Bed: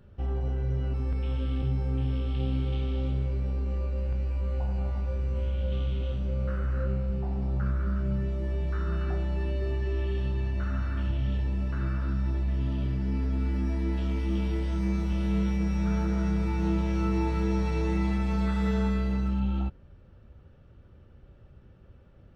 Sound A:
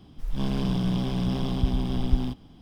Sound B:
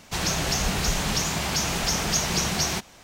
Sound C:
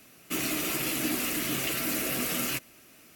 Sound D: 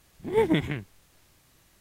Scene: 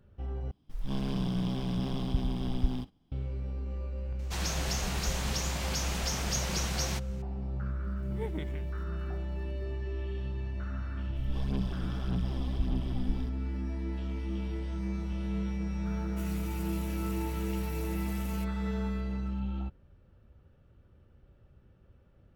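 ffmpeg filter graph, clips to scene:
-filter_complex "[1:a]asplit=2[a][b];[0:a]volume=-6.5dB[c];[a]agate=range=-13dB:threshold=-47dB:ratio=16:release=100:detection=peak[d];[4:a]acrusher=bits=8:mix=0:aa=0.000001[e];[b]aphaser=in_gain=1:out_gain=1:delay=4.1:decay=0.57:speed=1.7:type=sinusoidal[f];[c]asplit=2[g][h];[g]atrim=end=0.514[i];[d]atrim=end=2.61,asetpts=PTS-STARTPTS,volume=-5.5dB[j];[h]atrim=start=3.116[k];[2:a]atrim=end=3.03,asetpts=PTS-STARTPTS,volume=-9dB,afade=t=in:d=0.004:c=hsin,afade=t=out:st=3.026:d=0.004:c=hsin,adelay=4190[l];[e]atrim=end=1.8,asetpts=PTS-STARTPTS,volume=-16dB,afade=t=in:d=0.004:c=hsin,afade=t=out:st=1.796:d=0.004:c=hsin,adelay=7840[m];[f]atrim=end=2.61,asetpts=PTS-STARTPTS,volume=-12.5dB,afade=t=in:d=0.004:c=hsin,afade=t=out:st=2.606:d=0.004:c=hsin,adelay=10960[n];[3:a]atrim=end=3.15,asetpts=PTS-STARTPTS,volume=-18dB,afade=t=in:d=0.004:c=hsin,afade=t=out:st=3.146:d=0.004:c=hsin,adelay=15860[o];[i][j]acrossfade=d=0.004:c1=hsin:c2=hsin[p];[p][k]acrossfade=d=0.004:c1=hsin:c2=hsin[q];[q][l][m][n][o]amix=inputs=5:normalize=0"

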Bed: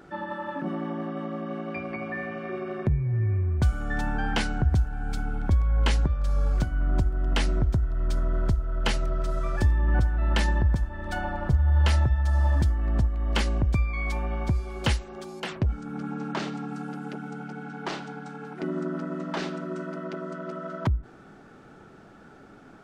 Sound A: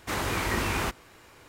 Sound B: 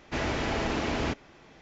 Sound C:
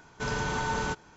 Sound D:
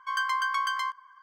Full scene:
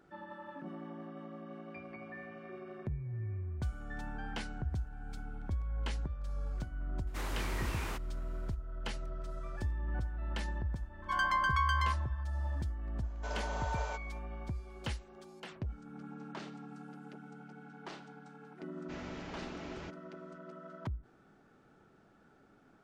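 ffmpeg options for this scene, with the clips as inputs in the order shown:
-filter_complex "[0:a]volume=-14dB[a];[4:a]aemphasis=mode=reproduction:type=cd[b];[3:a]highpass=f=620:t=q:w=5.9[c];[1:a]atrim=end=1.48,asetpts=PTS-STARTPTS,volume=-12dB,afade=t=in:d=0.004:c=hsin,afade=t=out:st=1.476:d=0.004:c=hsin,adelay=7070[d];[b]atrim=end=1.22,asetpts=PTS-STARTPTS,volume=-2.5dB,afade=t=in:d=0.004:c=hsin,afade=t=out:st=1.216:d=0.004:c=hsin,adelay=11020[e];[c]atrim=end=1.16,asetpts=PTS-STARTPTS,volume=-12.5dB,afade=t=in:d=0.004:c=hsin,afade=t=out:st=1.156:d=0.004:c=hsin,adelay=13030[f];[2:a]atrim=end=1.61,asetpts=PTS-STARTPTS,volume=-17dB,afade=t=in:d=0.004:c=hsin,afade=t=out:st=1.606:d=0.004:c=hsin,adelay=18770[g];[a][d][e][f][g]amix=inputs=5:normalize=0"

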